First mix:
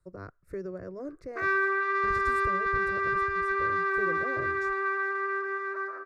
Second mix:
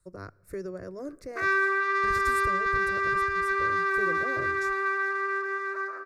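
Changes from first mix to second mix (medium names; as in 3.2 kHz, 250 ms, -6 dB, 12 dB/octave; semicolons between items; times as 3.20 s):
speech: send on; master: remove low-pass 2 kHz 6 dB/octave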